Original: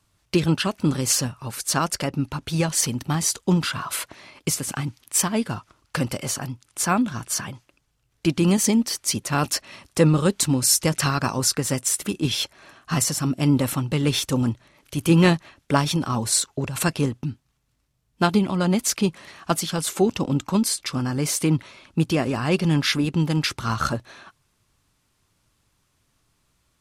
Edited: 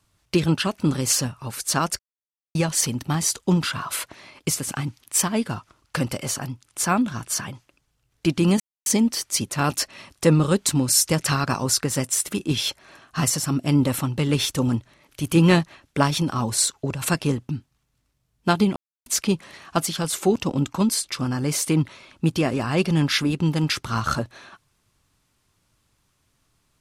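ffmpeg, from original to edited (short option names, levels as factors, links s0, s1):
-filter_complex "[0:a]asplit=6[s0][s1][s2][s3][s4][s5];[s0]atrim=end=1.99,asetpts=PTS-STARTPTS,afade=t=out:st=1.986:d=0.004:c=hsin[s6];[s1]atrim=start=1.99:end=2.55,asetpts=PTS-STARTPTS,volume=0[s7];[s2]atrim=start=2.55:end=8.6,asetpts=PTS-STARTPTS,afade=t=in:d=0.004:c=hsin,afade=t=out:st=6.046:d=0.004:c=hsin,apad=pad_dur=0.26[s8];[s3]atrim=start=8.6:end=18.5,asetpts=PTS-STARTPTS,afade=t=in:d=0.004:c=hsin,afade=t=out:st=9.896:d=0.004:c=hsin[s9];[s4]atrim=start=18.5:end=18.8,asetpts=PTS-STARTPTS,volume=0[s10];[s5]atrim=start=18.8,asetpts=PTS-STARTPTS,afade=t=in:d=0.004:c=hsin[s11];[s6][s7][s8][s9][s10][s11]concat=n=6:v=0:a=1"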